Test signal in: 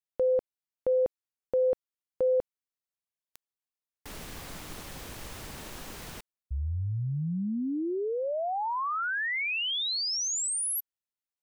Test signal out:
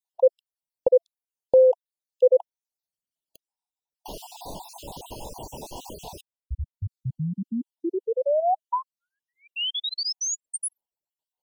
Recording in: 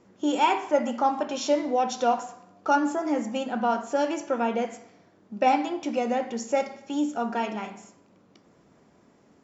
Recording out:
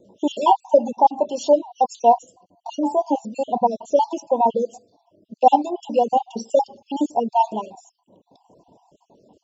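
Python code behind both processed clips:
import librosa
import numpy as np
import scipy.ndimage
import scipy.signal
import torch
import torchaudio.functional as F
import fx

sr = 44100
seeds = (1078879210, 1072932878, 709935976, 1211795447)

p1 = fx.spec_dropout(x, sr, seeds[0], share_pct=46)
p2 = scipy.signal.sosfilt(scipy.signal.ellip(4, 1.0, 60, [970.0, 2800.0], 'bandstop', fs=sr, output='sos'), p1)
p3 = fx.peak_eq(p2, sr, hz=830.0, db=9.5, octaves=1.8)
p4 = fx.rider(p3, sr, range_db=4, speed_s=2.0)
p5 = p3 + F.gain(torch.from_numpy(p4), 1.5).numpy()
p6 = fx.wow_flutter(p5, sr, seeds[1], rate_hz=2.1, depth_cents=22.0)
p7 = fx.dereverb_blind(p6, sr, rt60_s=0.82)
y = F.gain(torch.from_numpy(p7), -4.0).numpy()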